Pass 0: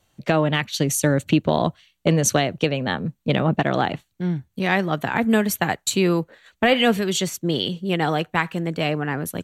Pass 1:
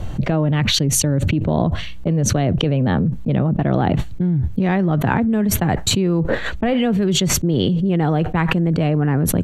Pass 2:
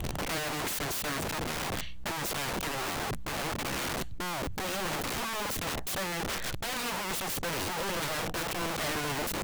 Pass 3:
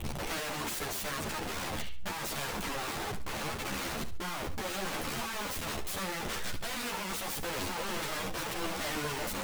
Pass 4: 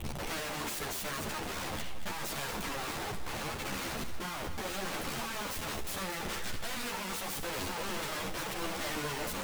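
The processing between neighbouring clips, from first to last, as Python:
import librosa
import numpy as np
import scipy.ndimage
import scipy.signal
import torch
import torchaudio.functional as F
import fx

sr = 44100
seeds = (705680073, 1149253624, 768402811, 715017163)

y1 = fx.tilt_eq(x, sr, slope=-4.0)
y1 = fx.env_flatten(y1, sr, amount_pct=100)
y1 = F.gain(torch.from_numpy(y1), -12.0).numpy()
y2 = fx.dynamic_eq(y1, sr, hz=2200.0, q=0.97, threshold_db=-36.0, ratio=4.0, max_db=-4)
y2 = (np.mod(10.0 ** (20.0 / 20.0) * y2 + 1.0, 2.0) - 1.0) / 10.0 ** (20.0 / 20.0)
y2 = F.gain(torch.from_numpy(y2), -8.5).numpy()
y3 = fx.echo_feedback(y2, sr, ms=70, feedback_pct=28, wet_db=-11.5)
y3 = fx.ensemble(y3, sr)
y4 = y3 + 10.0 ** (-10.5 / 20.0) * np.pad(y3, (int(230 * sr / 1000.0), 0))[:len(y3)]
y4 = F.gain(torch.from_numpy(y4), -1.5).numpy()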